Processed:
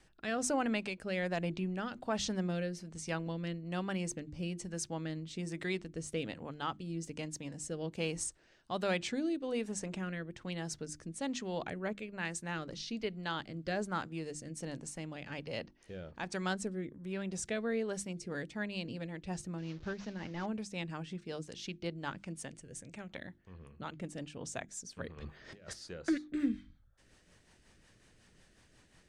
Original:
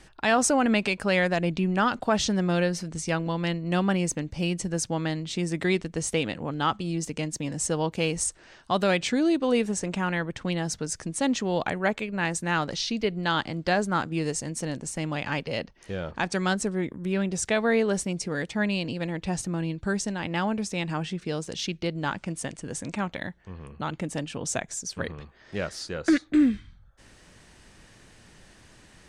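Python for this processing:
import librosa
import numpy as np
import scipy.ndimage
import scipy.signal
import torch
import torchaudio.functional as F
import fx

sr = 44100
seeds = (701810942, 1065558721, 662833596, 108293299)

y = fx.delta_mod(x, sr, bps=32000, step_db=-38.5, at=(19.58, 20.46))
y = fx.graphic_eq(y, sr, hz=(250, 1000, 4000), db=(-7, -11, -5), at=(22.58, 23.09), fade=0.02)
y = fx.over_compress(y, sr, threshold_db=-43.0, ratio=-1.0, at=(25.16, 25.72), fade=0.02)
y = fx.hum_notches(y, sr, base_hz=50, count=7)
y = fx.rotary_switch(y, sr, hz=1.2, then_hz=5.5, switch_at_s=17.78)
y = y * librosa.db_to_amplitude(-9.0)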